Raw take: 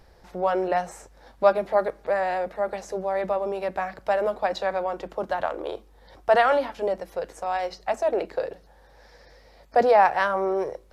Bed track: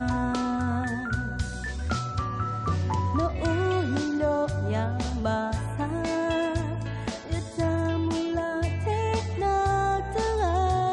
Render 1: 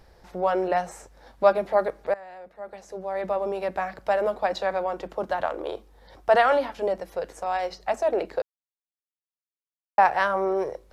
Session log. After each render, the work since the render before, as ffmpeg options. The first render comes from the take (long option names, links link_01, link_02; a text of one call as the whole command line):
ffmpeg -i in.wav -filter_complex "[0:a]asplit=4[link_01][link_02][link_03][link_04];[link_01]atrim=end=2.14,asetpts=PTS-STARTPTS,afade=type=out:start_time=2.136:duration=0.004:curve=hsin:silence=0.125893[link_05];[link_02]atrim=start=2.14:end=8.42,asetpts=PTS-STARTPTS,afade=type=in:duration=1.27:curve=qua:silence=0.125893,afade=type=out:start_time=6.276:duration=0.004:curve=hsin[link_06];[link_03]atrim=start=8.42:end=9.98,asetpts=PTS-STARTPTS,volume=0[link_07];[link_04]atrim=start=9.98,asetpts=PTS-STARTPTS,afade=type=in:duration=0.004:curve=hsin[link_08];[link_05][link_06][link_07][link_08]concat=n=4:v=0:a=1" out.wav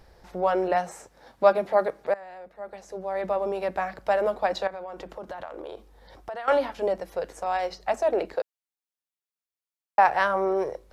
ffmpeg -i in.wav -filter_complex "[0:a]asettb=1/sr,asplit=3[link_01][link_02][link_03];[link_01]atrim=end=0.754[link_04];[link_02]atrim=start=0.75:end=2.22,asetpts=PTS-STARTPTS,afade=type=in:duration=0.004:curve=qsin,afade=type=out:start_time=1.466:duration=0.004:curve=qsin,highpass=93[link_05];[link_03]atrim=start=2.216[link_06];[link_04][link_05]acrossfade=duration=0.004:curve1=hsin:curve2=qsin[link_07];[link_07][link_06]acrossfade=duration=0.004:curve1=qsin:curve2=hsin,asettb=1/sr,asplit=3[link_08][link_09][link_10];[link_08]atrim=end=4.674[link_11];[link_09]atrim=start=4.67:end=6.48,asetpts=PTS-STARTPTS,afade=type=in:duration=0.004:curve=qsin,afade=type=out:start_time=1.806:duration=0.004:curve=qsin,acompressor=threshold=-34dB:ratio=5:attack=3.2:release=140:knee=1:detection=peak[link_12];[link_10]atrim=start=6.476[link_13];[link_11][link_12]acrossfade=duration=0.004:curve1=hsin:curve2=qsin[link_14];[link_14][link_13]acrossfade=duration=0.004:curve1=qsin:curve2=hsin,asettb=1/sr,asplit=3[link_15][link_16][link_17];[link_15]atrim=end=8.344[link_18];[link_16]atrim=start=8.34:end=10.08,asetpts=PTS-STARTPTS,afade=type=in:duration=0.004:curve=qsin,afade=type=out:start_time=1.736:duration=0.004:curve=qsin,highpass=frequency=230:poles=1[link_19];[link_17]atrim=start=10.076[link_20];[link_18][link_19]acrossfade=duration=0.004:curve1=hsin:curve2=qsin[link_21];[link_21][link_20]acrossfade=duration=0.004:curve1=qsin:curve2=hsin" out.wav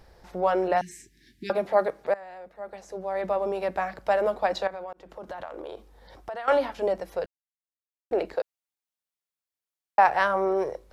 ffmpeg -i in.wav -filter_complex "[0:a]asettb=1/sr,asplit=3[link_01][link_02][link_03];[link_01]atrim=end=0.814[link_04];[link_02]atrim=start=0.81:end=1.5,asetpts=PTS-STARTPTS,afade=type=in:duration=0.004:curve=qsin,afade=type=out:start_time=0.686:duration=0.004:curve=qsin,asuperstop=centerf=820:order=20:qfactor=0.61[link_05];[link_03]atrim=start=1.496[link_06];[link_04][link_05]acrossfade=duration=0.004:curve1=hsin:curve2=qsin[link_07];[link_07][link_06]acrossfade=duration=0.004:curve1=qsin:curve2=hsin,asplit=4[link_08][link_09][link_10][link_11];[link_08]atrim=end=4.93,asetpts=PTS-STARTPTS,afade=type=out:start_time=4.926:duration=0.004:curve=hsin[link_12];[link_09]atrim=start=4.93:end=7.26,asetpts=PTS-STARTPTS,afade=type=in:duration=0.47:curve=qsin,afade=type=out:start_time=2.326:duration=0.004:curve=hsin[link_13];[link_10]atrim=start=7.26:end=8.11,asetpts=PTS-STARTPTS,volume=0[link_14];[link_11]atrim=start=8.11,asetpts=PTS-STARTPTS,afade=type=in:duration=0.004:curve=hsin[link_15];[link_12][link_13][link_14][link_15]concat=n=4:v=0:a=1" out.wav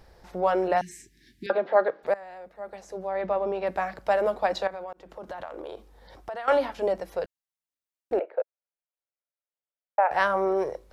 ffmpeg -i in.wav -filter_complex "[0:a]asettb=1/sr,asplit=3[link_01][link_02][link_03];[link_01]atrim=end=1.464[link_04];[link_02]atrim=start=1.46:end=2.03,asetpts=PTS-STARTPTS,afade=type=in:duration=0.004:curve=qsin,afade=type=out:start_time=0.566:duration=0.004:curve=qsin,highpass=frequency=160:width=0.5412,highpass=frequency=160:width=1.3066,equalizer=frequency=190:width_type=q:width=4:gain=-9,equalizer=frequency=500:width_type=q:width=4:gain=4,equalizer=frequency=1600:width_type=q:width=4:gain=6,equalizer=frequency=2300:width_type=q:width=4:gain=-4,lowpass=frequency=4000:width=0.5412,lowpass=frequency=4000:width=1.3066[link_05];[link_03]atrim=start=2.026[link_06];[link_04][link_05]acrossfade=duration=0.004:curve1=hsin:curve2=qsin[link_07];[link_07][link_06]acrossfade=duration=0.004:curve1=qsin:curve2=hsin,asettb=1/sr,asplit=3[link_08][link_09][link_10];[link_08]atrim=end=3.074[link_11];[link_09]atrim=start=3.07:end=3.67,asetpts=PTS-STARTPTS,afade=type=in:duration=0.004:curve=qsin,afade=type=out:start_time=0.596:duration=0.004:curve=qsin,lowpass=3900[link_12];[link_10]atrim=start=3.666[link_13];[link_11][link_12]acrossfade=duration=0.004:curve1=hsin:curve2=qsin[link_14];[link_14][link_13]acrossfade=duration=0.004:curve1=qsin:curve2=hsin,asettb=1/sr,asplit=3[link_15][link_16][link_17];[link_15]atrim=end=8.194[link_18];[link_16]atrim=start=8.19:end=10.11,asetpts=PTS-STARTPTS,afade=type=in:duration=0.004:curve=qsin,afade=type=out:start_time=1.916:duration=0.004:curve=qsin,highpass=frequency=490:width=0.5412,highpass=frequency=490:width=1.3066,equalizer=frequency=560:width_type=q:width=4:gain=5,equalizer=frequency=790:width_type=q:width=4:gain=-4,equalizer=frequency=1100:width_type=q:width=4:gain=-9,equalizer=frequency=1800:width_type=q:width=4:gain=-8,lowpass=frequency=2000:width=0.5412,lowpass=frequency=2000:width=1.3066[link_19];[link_17]atrim=start=10.106[link_20];[link_18][link_19]acrossfade=duration=0.004:curve1=hsin:curve2=qsin[link_21];[link_21][link_20]acrossfade=duration=0.004:curve1=qsin:curve2=hsin" out.wav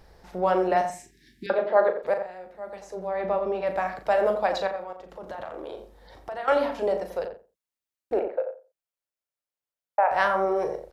ffmpeg -i in.wav -filter_complex "[0:a]asplit=2[link_01][link_02];[link_02]adelay=38,volume=-8.5dB[link_03];[link_01][link_03]amix=inputs=2:normalize=0,asplit=2[link_04][link_05];[link_05]adelay=87,lowpass=frequency=1200:poles=1,volume=-6.5dB,asplit=2[link_06][link_07];[link_07]adelay=87,lowpass=frequency=1200:poles=1,volume=0.18,asplit=2[link_08][link_09];[link_09]adelay=87,lowpass=frequency=1200:poles=1,volume=0.18[link_10];[link_04][link_06][link_08][link_10]amix=inputs=4:normalize=0" out.wav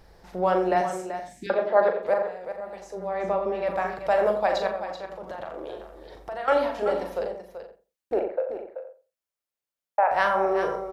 ffmpeg -i in.wav -filter_complex "[0:a]asplit=2[link_01][link_02];[link_02]adelay=44,volume=-11dB[link_03];[link_01][link_03]amix=inputs=2:normalize=0,asplit=2[link_04][link_05];[link_05]aecho=0:1:383:0.316[link_06];[link_04][link_06]amix=inputs=2:normalize=0" out.wav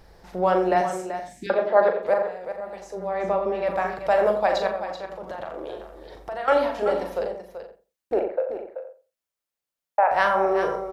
ffmpeg -i in.wav -af "volume=2dB" out.wav